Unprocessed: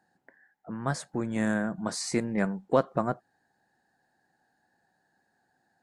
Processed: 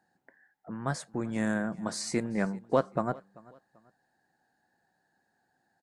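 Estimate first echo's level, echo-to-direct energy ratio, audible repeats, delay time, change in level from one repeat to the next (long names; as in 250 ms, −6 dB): −23.0 dB, −22.5 dB, 2, 389 ms, −9.5 dB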